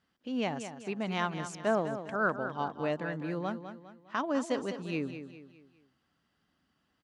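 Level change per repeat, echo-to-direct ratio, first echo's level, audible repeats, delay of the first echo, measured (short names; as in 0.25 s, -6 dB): -7.5 dB, -9.0 dB, -10.0 dB, 4, 0.203 s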